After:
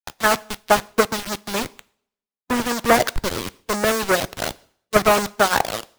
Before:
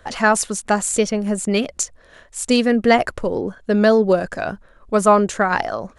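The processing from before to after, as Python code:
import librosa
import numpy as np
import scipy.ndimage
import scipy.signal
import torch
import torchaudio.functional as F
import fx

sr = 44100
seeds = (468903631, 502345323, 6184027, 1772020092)

y = fx.halfwave_hold(x, sr)
y = scipy.signal.sosfilt(scipy.signal.butter(2, 1400.0, 'lowpass', fs=sr, output='sos'), y)
y = fx.low_shelf(y, sr, hz=68.0, db=-2.0)
y = np.where(np.abs(y) >= 10.0 ** (-19.0 / 20.0), y, 0.0)
y = fx.tilt_shelf(y, sr, db=-6.0, hz=1100.0)
y = fx.rev_double_slope(y, sr, seeds[0], early_s=0.68, late_s=1.8, knee_db=-22, drr_db=14.5)
y = fx.hpss(y, sr, part='harmonic', gain_db=-9)
y = fx.band_widen(y, sr, depth_pct=70)
y = y * librosa.db_to_amplitude(2.0)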